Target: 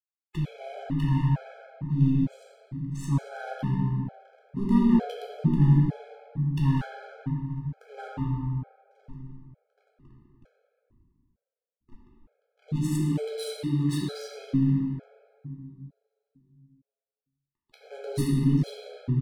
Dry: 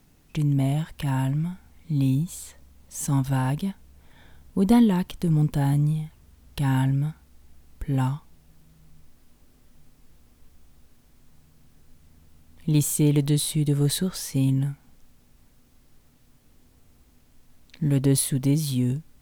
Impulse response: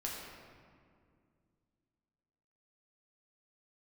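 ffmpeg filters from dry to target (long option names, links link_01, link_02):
-filter_complex "[0:a]asoftclip=type=tanh:threshold=-14.5dB,asplit=2[link_01][link_02];[link_02]acompressor=threshold=-33dB:ratio=6,volume=-1.5dB[link_03];[link_01][link_03]amix=inputs=2:normalize=0,asplit=2[link_04][link_05];[link_05]adelay=85,lowpass=frequency=830:poles=1,volume=-6dB,asplit=2[link_06][link_07];[link_07]adelay=85,lowpass=frequency=830:poles=1,volume=0.16,asplit=2[link_08][link_09];[link_09]adelay=85,lowpass=frequency=830:poles=1,volume=0.16[link_10];[link_04][link_06][link_08][link_10]amix=inputs=4:normalize=0,aeval=exprs='val(0)*gte(abs(val(0)),0.0141)':channel_layout=same,adynamicsmooth=sensitivity=4.5:basefreq=1400,asettb=1/sr,asplit=3[link_11][link_12][link_13];[link_11]atrim=end=12.764[link_14];[link_12]atrim=start=12.76:end=14.53,asetpts=PTS-STARTPTS,afade=type=in:duration=0.004:curve=qsin,afade=type=out:start_time=1.766:duration=0.004:curve=qsin,highpass=frequency=240:poles=1[link_15];[link_13]atrim=start=14.526[link_16];[link_14][link_15]acrossfade=duration=0.004:curve1=hsin:curve2=qsin[link_17];[link_17][link_16]acrossfade=duration=0.004:curve1=qsin:curve2=hsin[link_18];[1:a]atrim=start_sample=2205,asetrate=40572,aresample=44100[link_19];[link_18][link_19]afir=irnorm=-1:irlink=0,afftfilt=real='re*gt(sin(2*PI*1.1*pts/sr)*(1-2*mod(floor(b*sr/1024/430),2)),0)':imag='im*gt(sin(2*PI*1.1*pts/sr)*(1-2*mod(floor(b*sr/1024/430),2)),0)':win_size=1024:overlap=0.75,volume=-3.5dB"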